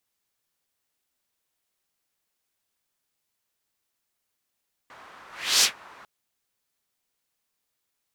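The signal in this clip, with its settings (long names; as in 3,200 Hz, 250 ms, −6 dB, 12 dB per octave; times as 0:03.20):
pass-by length 1.15 s, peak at 0:00.73, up 0.37 s, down 0.12 s, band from 1,200 Hz, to 5,400 Hz, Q 1.5, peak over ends 30.5 dB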